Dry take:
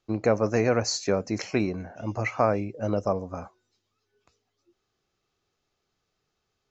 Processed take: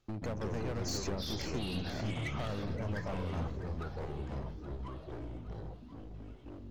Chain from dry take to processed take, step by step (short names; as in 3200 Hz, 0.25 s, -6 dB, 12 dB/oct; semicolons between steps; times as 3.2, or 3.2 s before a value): tone controls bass +8 dB, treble -1 dB; compressor 6:1, threshold -31 dBFS, peak gain reduction 15.5 dB; hard clip -35.5 dBFS, distortion -6 dB; on a send: echo with dull and thin repeats by turns 0.259 s, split 1300 Hz, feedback 75%, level -11.5 dB; on the sum: echoes that change speed 0.112 s, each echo -4 st, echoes 3